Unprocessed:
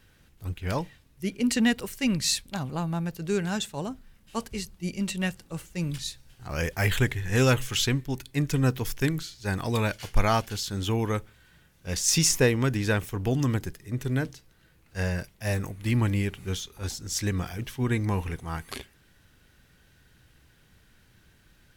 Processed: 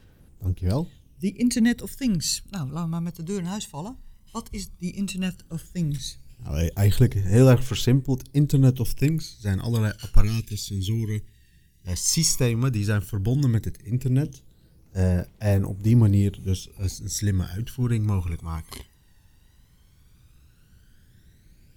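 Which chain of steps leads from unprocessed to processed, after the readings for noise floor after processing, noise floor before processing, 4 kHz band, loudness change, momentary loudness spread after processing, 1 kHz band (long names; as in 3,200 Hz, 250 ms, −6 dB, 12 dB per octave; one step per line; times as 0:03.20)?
−57 dBFS, −61 dBFS, −1.5 dB, +3.5 dB, 15 LU, −5.5 dB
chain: gain on a spectral selection 0:10.23–0:11.87, 440–1,600 Hz −22 dB
parametric band 1,800 Hz −8 dB 2 octaves
phase shifter 0.13 Hz, delay 1.1 ms, feedback 59%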